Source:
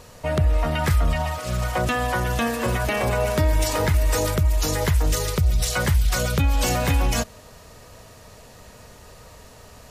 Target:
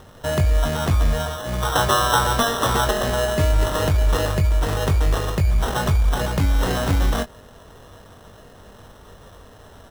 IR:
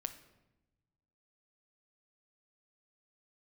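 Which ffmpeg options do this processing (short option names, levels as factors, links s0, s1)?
-filter_complex "[0:a]asettb=1/sr,asplit=3[s0][s1][s2];[s0]atrim=end=1.624[s3];[s1]atrim=start=1.62:end=2.91,asetpts=PTS-STARTPTS,afade=t=in:d=0.004:c=qsin,afade=t=out:st=1.286:d=0.004:c=qsin,equalizer=f=125:t=o:w=1:g=5,equalizer=f=250:t=o:w=1:g=-11,equalizer=f=1000:t=o:w=1:g=9,equalizer=f=2000:t=o:w=1:g=7[s4];[s2]atrim=start=2.906[s5];[s3][s4]acrossfade=d=0.004:c1=hsin:c2=qsin[s6];[s6][s5]acrossfade=d=0.004:c1=qsin:c2=hsin,acrusher=samples=19:mix=1:aa=0.000001,asplit=2[s7][s8];[s8]adelay=21,volume=0.398[s9];[s7][s9]amix=inputs=2:normalize=0"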